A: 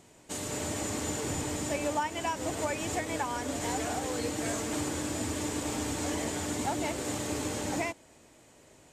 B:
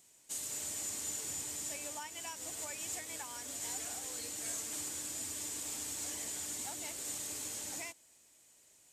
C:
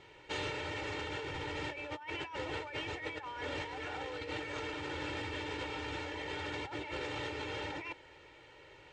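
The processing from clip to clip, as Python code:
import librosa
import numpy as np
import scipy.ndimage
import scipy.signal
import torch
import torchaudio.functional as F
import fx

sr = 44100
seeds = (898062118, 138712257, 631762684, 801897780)

y1 = librosa.effects.preemphasis(x, coef=0.9, zi=[0.0])
y2 = scipy.signal.sosfilt(scipy.signal.butter(4, 2900.0, 'lowpass', fs=sr, output='sos'), y1)
y2 = y2 + 0.86 * np.pad(y2, (int(2.2 * sr / 1000.0), 0))[:len(y2)]
y2 = fx.over_compress(y2, sr, threshold_db=-53.0, ratio=-1.0)
y2 = y2 * 10.0 ** (12.0 / 20.0)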